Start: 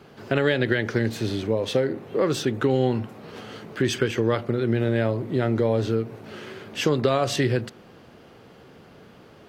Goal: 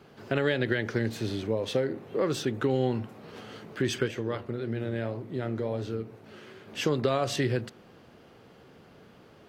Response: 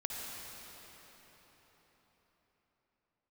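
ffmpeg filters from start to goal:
-filter_complex "[0:a]asplit=3[a][b][c];[a]afade=t=out:st=4.07:d=0.02[d];[b]flanger=delay=9.9:depth=8.2:regen=-77:speed=1.9:shape=sinusoidal,afade=t=in:st=4.07:d=0.02,afade=t=out:st=6.67:d=0.02[e];[c]afade=t=in:st=6.67:d=0.02[f];[d][e][f]amix=inputs=3:normalize=0,volume=-5dB"

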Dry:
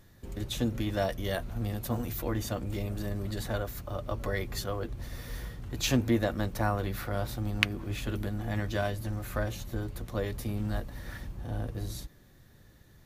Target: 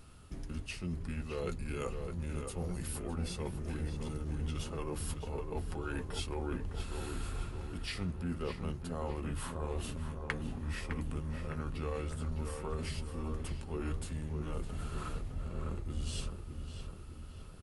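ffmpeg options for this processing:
-filter_complex "[0:a]areverse,acompressor=threshold=-38dB:ratio=6,areverse,asplit=2[a][b];[b]adelay=451,lowpass=f=3.4k:p=1,volume=-6dB,asplit=2[c][d];[d]adelay=451,lowpass=f=3.4k:p=1,volume=0.54,asplit=2[e][f];[f]adelay=451,lowpass=f=3.4k:p=1,volume=0.54,asplit=2[g][h];[h]adelay=451,lowpass=f=3.4k:p=1,volume=0.54,asplit=2[i][j];[j]adelay=451,lowpass=f=3.4k:p=1,volume=0.54,asplit=2[k][l];[l]adelay=451,lowpass=f=3.4k:p=1,volume=0.54,asplit=2[m][n];[n]adelay=451,lowpass=f=3.4k:p=1,volume=0.54[o];[a][c][e][g][i][k][m][o]amix=inputs=8:normalize=0,asetrate=32667,aresample=44100,volume=2.5dB"

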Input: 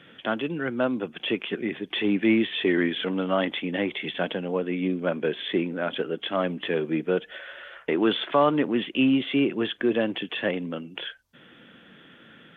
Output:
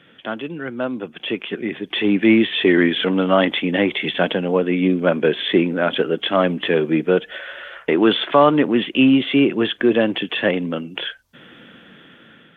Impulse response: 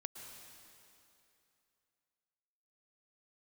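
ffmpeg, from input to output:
-af "dynaudnorm=f=770:g=5:m=11.5dB"

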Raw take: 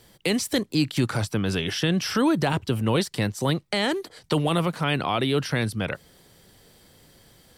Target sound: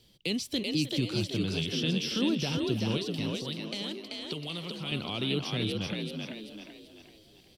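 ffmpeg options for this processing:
-filter_complex "[0:a]asettb=1/sr,asplit=3[a][b][c];[a]atrim=end=2.974[d];[b]atrim=start=2.97:end=4.92,asetpts=PTS-STARTPTS,afade=t=in:d=0.004:c=qsin,afade=t=out:st=1.946:d=0.004:c=qsin,acrossover=split=960|6300[e][f][g];[e]acompressor=threshold=-30dB:ratio=4[h];[f]acompressor=threshold=-30dB:ratio=4[i];[g]acompressor=threshold=-44dB:ratio=4[j];[h][i][j]amix=inputs=3:normalize=0[k];[c]atrim=start=4.916[l];[d][k]acrossfade=d=0.004:c1=hsin:c2=qsin[m];[m][l]acrossfade=d=0.004:c1=qsin:c2=hsin,asplit=2[n][o];[o]asplit=5[p][q][r][s][t];[p]adelay=385,afreqshift=52,volume=-3dB[u];[q]adelay=770,afreqshift=104,volume=-10.7dB[v];[r]adelay=1155,afreqshift=156,volume=-18.5dB[w];[s]adelay=1540,afreqshift=208,volume=-26.2dB[x];[t]adelay=1925,afreqshift=260,volume=-34dB[y];[u][v][w][x][y]amix=inputs=5:normalize=0[z];[n][z]amix=inputs=2:normalize=0,aexciter=amount=8.5:drive=4.4:freq=2.6k,firequalizer=gain_entry='entry(260,0);entry(790,-10);entry(2600,-10);entry(8000,-28)':delay=0.05:min_phase=1,asplit=2[aa][ab];[ab]adelay=310,highpass=300,lowpass=3.4k,asoftclip=type=hard:threshold=-17.5dB,volume=-13dB[ac];[aa][ac]amix=inputs=2:normalize=0,volume=-7dB"

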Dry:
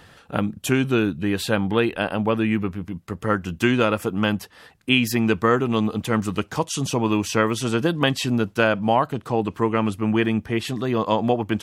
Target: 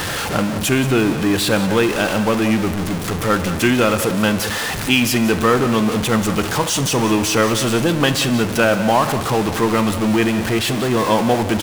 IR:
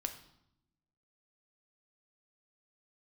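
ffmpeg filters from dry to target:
-filter_complex "[0:a]aeval=exprs='val(0)+0.5*0.119*sgn(val(0))':c=same,aecho=1:1:181:0.211,asplit=2[a][b];[1:a]atrim=start_sample=2205,asetrate=23814,aresample=44100,lowshelf=f=130:g=-10.5[c];[b][c]afir=irnorm=-1:irlink=0,volume=-3.5dB[d];[a][d]amix=inputs=2:normalize=0,volume=-4dB"

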